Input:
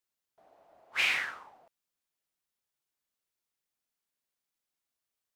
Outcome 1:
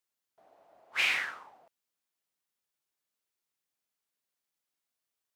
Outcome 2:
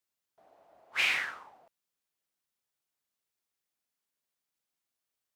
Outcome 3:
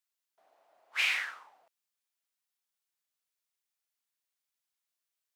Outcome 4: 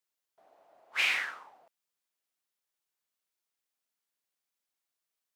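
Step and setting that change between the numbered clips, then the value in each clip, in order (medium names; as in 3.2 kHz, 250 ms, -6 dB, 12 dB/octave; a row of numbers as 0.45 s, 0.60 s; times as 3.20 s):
high-pass, cutoff frequency: 110 Hz, 42 Hz, 1.2 kHz, 320 Hz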